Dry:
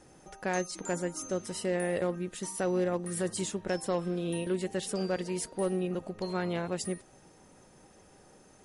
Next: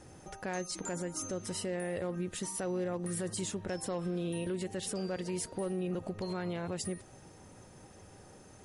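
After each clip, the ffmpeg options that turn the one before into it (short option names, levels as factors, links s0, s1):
-af "equalizer=f=95:t=o:w=0.74:g=10.5,alimiter=level_in=1.78:limit=0.0631:level=0:latency=1:release=111,volume=0.562,volume=1.26"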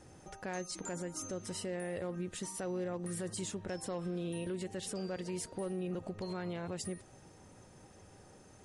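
-af "aresample=22050,aresample=44100,volume=0.708"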